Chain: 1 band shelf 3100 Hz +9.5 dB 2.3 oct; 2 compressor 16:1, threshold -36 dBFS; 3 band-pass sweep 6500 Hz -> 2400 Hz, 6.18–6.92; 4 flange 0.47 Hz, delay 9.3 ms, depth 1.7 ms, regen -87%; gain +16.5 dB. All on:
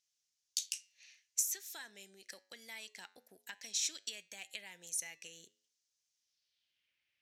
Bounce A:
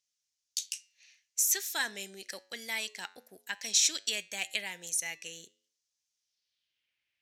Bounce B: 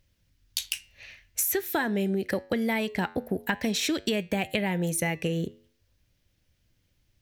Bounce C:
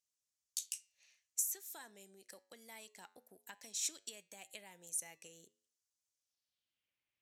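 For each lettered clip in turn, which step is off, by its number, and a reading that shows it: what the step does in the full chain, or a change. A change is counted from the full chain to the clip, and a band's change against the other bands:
2, mean gain reduction 10.5 dB; 3, 8 kHz band -22.0 dB; 1, 2 kHz band -8.0 dB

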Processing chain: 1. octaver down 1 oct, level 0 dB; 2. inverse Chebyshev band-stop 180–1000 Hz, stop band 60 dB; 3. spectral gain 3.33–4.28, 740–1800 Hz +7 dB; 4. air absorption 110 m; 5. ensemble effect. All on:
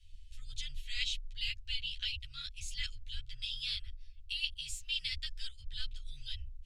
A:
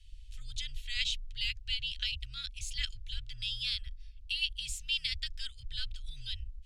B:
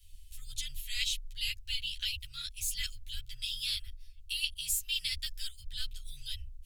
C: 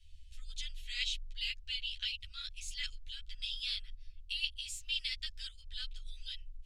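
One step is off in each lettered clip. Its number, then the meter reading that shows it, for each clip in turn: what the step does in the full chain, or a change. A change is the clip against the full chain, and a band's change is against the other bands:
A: 5, loudness change +3.0 LU; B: 4, 8 kHz band +10.0 dB; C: 1, crest factor change +2.0 dB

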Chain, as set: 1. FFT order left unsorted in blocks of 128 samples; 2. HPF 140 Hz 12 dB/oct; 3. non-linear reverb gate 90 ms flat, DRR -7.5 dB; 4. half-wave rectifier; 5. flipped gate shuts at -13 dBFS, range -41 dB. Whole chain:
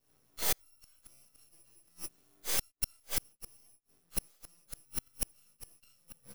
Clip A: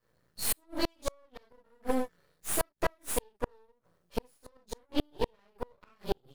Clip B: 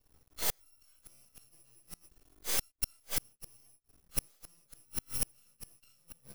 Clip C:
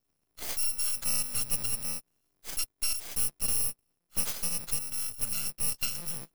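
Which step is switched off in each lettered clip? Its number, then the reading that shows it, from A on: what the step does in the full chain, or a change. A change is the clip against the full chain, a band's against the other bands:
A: 1, 250 Hz band +12.5 dB; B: 2, 125 Hz band +2.0 dB; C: 3, momentary loudness spread change -14 LU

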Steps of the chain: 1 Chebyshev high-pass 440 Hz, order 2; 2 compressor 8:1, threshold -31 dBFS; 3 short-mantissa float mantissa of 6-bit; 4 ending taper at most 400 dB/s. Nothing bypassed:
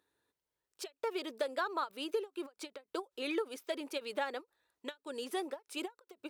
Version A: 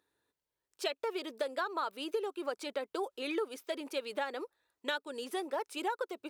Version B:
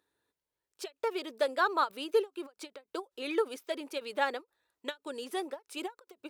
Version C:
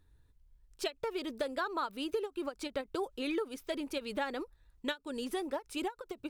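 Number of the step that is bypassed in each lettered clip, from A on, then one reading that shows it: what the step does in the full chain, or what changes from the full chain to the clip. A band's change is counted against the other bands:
4, 8 kHz band -2.0 dB; 2, mean gain reduction 3.0 dB; 1, 250 Hz band +3.5 dB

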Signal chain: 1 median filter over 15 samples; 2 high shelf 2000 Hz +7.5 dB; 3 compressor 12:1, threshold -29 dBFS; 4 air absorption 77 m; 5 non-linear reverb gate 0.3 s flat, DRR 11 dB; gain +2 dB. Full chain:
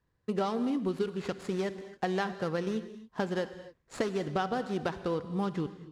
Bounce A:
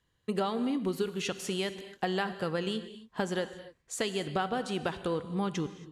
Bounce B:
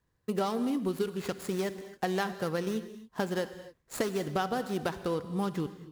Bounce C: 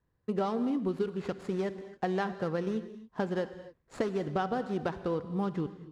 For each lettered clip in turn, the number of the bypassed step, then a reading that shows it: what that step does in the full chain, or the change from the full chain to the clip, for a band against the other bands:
1, 8 kHz band +10.0 dB; 4, 8 kHz band +7.0 dB; 2, 4 kHz band -5.0 dB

